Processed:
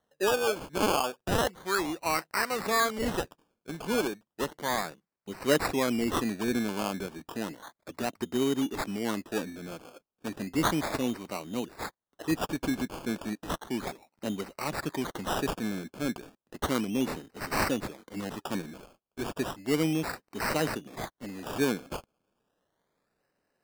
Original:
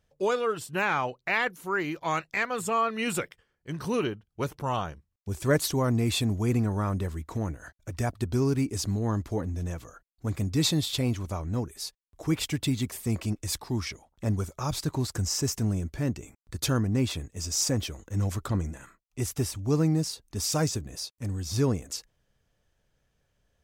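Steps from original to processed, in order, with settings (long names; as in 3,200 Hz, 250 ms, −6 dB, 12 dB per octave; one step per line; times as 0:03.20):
high-pass filter 200 Hz 24 dB per octave
sample-and-hold swept by an LFO 18×, swing 60% 0.33 Hz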